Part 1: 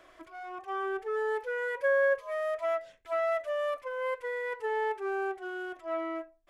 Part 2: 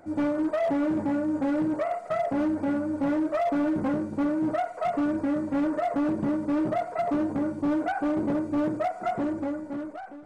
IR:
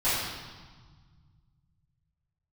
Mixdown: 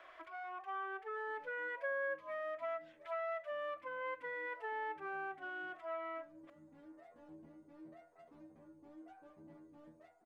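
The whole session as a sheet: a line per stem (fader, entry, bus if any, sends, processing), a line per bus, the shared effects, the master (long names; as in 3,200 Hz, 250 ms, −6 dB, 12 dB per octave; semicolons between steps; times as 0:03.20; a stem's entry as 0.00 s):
+2.0 dB, 0.00 s, no send, three-way crossover with the lows and the highs turned down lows −17 dB, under 570 Hz, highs −17 dB, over 3,500 Hz
−16.0 dB, 1.20 s, no send, parametric band 1,300 Hz −5.5 dB 0.31 octaves; flanger 0.71 Hz, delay 0.5 ms, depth 2.6 ms, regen −66%; stiff-string resonator 79 Hz, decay 0.38 s, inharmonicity 0.002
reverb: not used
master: downward compressor 2 to 1, threshold −46 dBFS, peak gain reduction 11.5 dB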